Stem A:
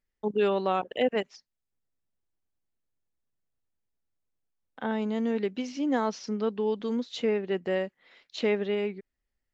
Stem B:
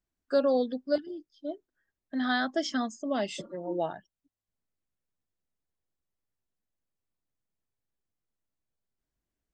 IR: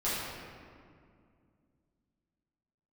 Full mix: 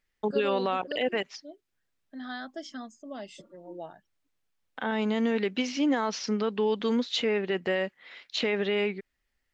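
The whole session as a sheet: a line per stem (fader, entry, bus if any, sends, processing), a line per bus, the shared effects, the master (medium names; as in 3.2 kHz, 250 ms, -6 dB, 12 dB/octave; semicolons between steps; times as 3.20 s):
+2.5 dB, 0.00 s, no send, peaking EQ 2.4 kHz +8 dB 2.8 oct; peak limiter -20 dBFS, peak gain reduction 10.5 dB
-10.0 dB, 0.00 s, no send, none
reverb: none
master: none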